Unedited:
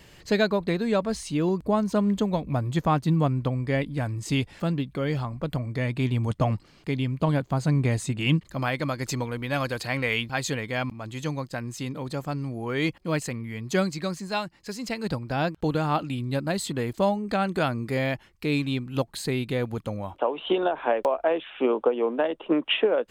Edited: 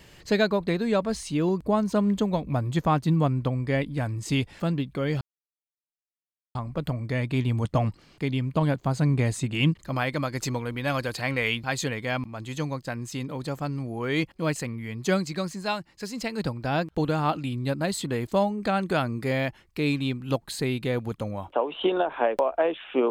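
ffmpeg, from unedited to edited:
ffmpeg -i in.wav -filter_complex "[0:a]asplit=2[link_01][link_02];[link_01]atrim=end=5.21,asetpts=PTS-STARTPTS,afade=type=out:start_time=5.206:duration=0.004:curve=hsin,apad=pad_dur=1.34[link_03];[link_02]atrim=start=5.21,asetpts=PTS-STARTPTS,afade=type=in:duration=0.004:curve=hsin[link_04];[link_03][link_04]concat=n=2:v=0:a=1" out.wav

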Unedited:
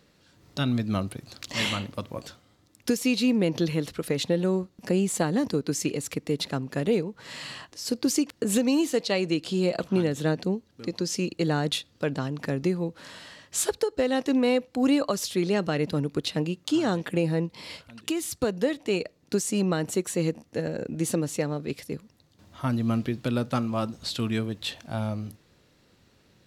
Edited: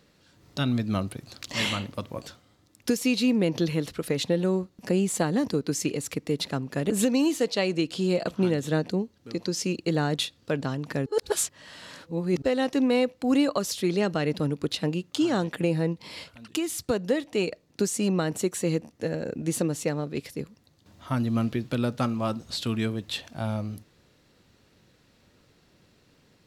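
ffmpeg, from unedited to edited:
ffmpeg -i in.wav -filter_complex "[0:a]asplit=4[link_01][link_02][link_03][link_04];[link_01]atrim=end=6.902[link_05];[link_02]atrim=start=8.428:end=12.592[link_06];[link_03]atrim=start=12.588:end=13.952,asetpts=PTS-STARTPTS,areverse[link_07];[link_04]atrim=start=13.948[link_08];[link_05][link_06]acrossfade=duration=0.004:curve1=hsin:curve2=hsin[link_09];[link_09][link_07]acrossfade=duration=0.004:curve1=hsin:curve2=hsin[link_10];[link_10][link_08]acrossfade=duration=0.004:curve1=hsin:curve2=hsin" out.wav

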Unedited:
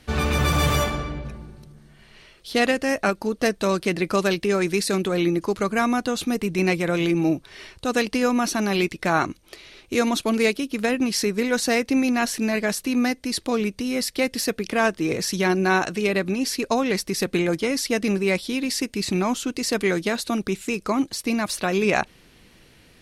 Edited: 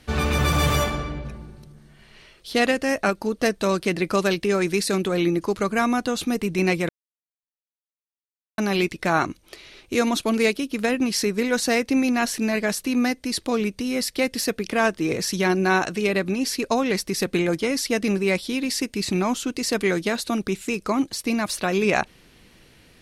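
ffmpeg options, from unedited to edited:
ffmpeg -i in.wav -filter_complex "[0:a]asplit=3[link_01][link_02][link_03];[link_01]atrim=end=6.89,asetpts=PTS-STARTPTS,afade=type=out:start_time=6.886:duration=0.004:curve=hsin[link_04];[link_02]atrim=start=6.89:end=8.58,asetpts=PTS-STARTPTS,volume=0[link_05];[link_03]atrim=start=8.58,asetpts=PTS-STARTPTS,afade=type=in:duration=0.004:curve=hsin[link_06];[link_04][link_05][link_06]concat=n=3:v=0:a=1" out.wav

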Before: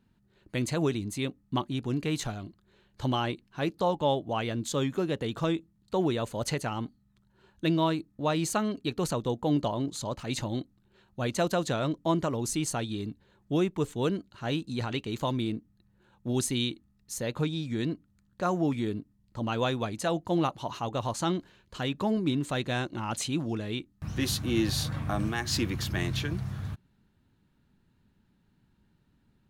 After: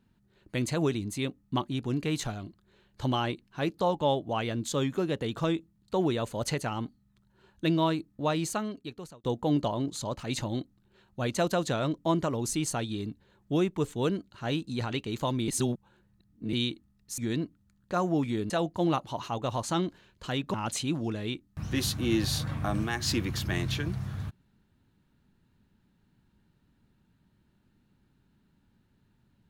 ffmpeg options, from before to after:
ffmpeg -i in.wav -filter_complex "[0:a]asplit=7[link_01][link_02][link_03][link_04][link_05][link_06][link_07];[link_01]atrim=end=9.24,asetpts=PTS-STARTPTS,afade=type=out:start_time=8.25:duration=0.99[link_08];[link_02]atrim=start=9.24:end=15.482,asetpts=PTS-STARTPTS,afade=type=in:duration=0.004:curve=hsin[link_09];[link_03]atrim=start=15.478:end=16.532,asetpts=PTS-STARTPTS,areverse[link_10];[link_04]atrim=start=16.528:end=17.182[link_11];[link_05]atrim=start=17.668:end=18.992[link_12];[link_06]atrim=start=20.008:end=22.052[link_13];[link_07]atrim=start=22.988[link_14];[link_08][link_09]concat=n=2:v=0:a=1[link_15];[link_15][link_10]acrossfade=duration=0.004:curve1=hsin:curve2=hsin[link_16];[link_16][link_11]acrossfade=duration=0.004:curve1=hsin:curve2=hsin[link_17];[link_17][link_12]acrossfade=duration=0.004:curve1=hsin:curve2=hsin[link_18];[link_18][link_13]acrossfade=duration=0.004:curve1=hsin:curve2=hsin[link_19];[link_19][link_14]acrossfade=duration=0.004:curve1=hsin:curve2=hsin" out.wav

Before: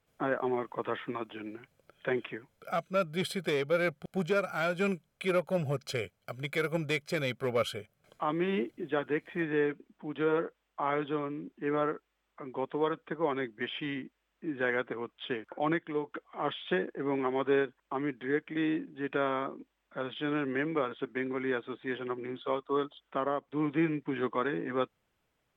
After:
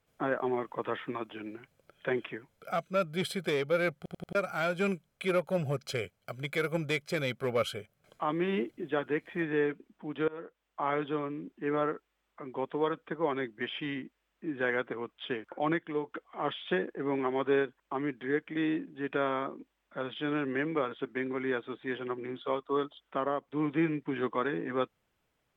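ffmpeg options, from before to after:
ffmpeg -i in.wav -filter_complex "[0:a]asplit=6[link_01][link_02][link_03][link_04][link_05][link_06];[link_01]atrim=end=4.082[link_07];[link_02]atrim=start=3.988:end=4.082[link_08];[link_03]atrim=start=3.988:end=4.082[link_09];[link_04]atrim=start=3.988:end=4.082[link_10];[link_05]atrim=start=4.348:end=10.28,asetpts=PTS-STARTPTS,afade=type=out:start_time=5.928:duration=0.004:curve=hsin:silence=0.0707946[link_11];[link_06]atrim=start=10.28,asetpts=PTS-STARTPTS,afade=type=in:duration=0.54:silence=0.0707946[link_12];[link_07][link_08]acrossfade=duration=0.004:curve1=hsin:curve2=hsin[link_13];[link_13][link_09]acrossfade=duration=0.004:curve1=hsin:curve2=hsin[link_14];[link_14][link_10]acrossfade=duration=0.004:curve1=hsin:curve2=hsin[link_15];[link_11][link_12]concat=n=2:v=0:a=1[link_16];[link_15][link_16]acrossfade=duration=0.004:curve1=hsin:curve2=hsin" out.wav

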